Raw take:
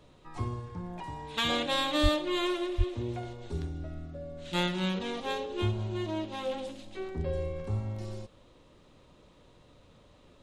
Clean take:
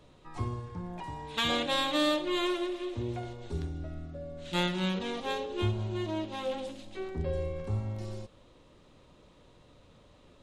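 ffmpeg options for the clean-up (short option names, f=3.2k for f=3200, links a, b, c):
-filter_complex "[0:a]asplit=3[a][b][c];[a]afade=t=out:st=2.02:d=0.02[d];[b]highpass=f=140:w=0.5412,highpass=f=140:w=1.3066,afade=t=in:st=2.02:d=0.02,afade=t=out:st=2.14:d=0.02[e];[c]afade=t=in:st=2.14:d=0.02[f];[d][e][f]amix=inputs=3:normalize=0,asplit=3[g][h][i];[g]afade=t=out:st=2.77:d=0.02[j];[h]highpass=f=140:w=0.5412,highpass=f=140:w=1.3066,afade=t=in:st=2.77:d=0.02,afade=t=out:st=2.89:d=0.02[k];[i]afade=t=in:st=2.89:d=0.02[l];[j][k][l]amix=inputs=3:normalize=0"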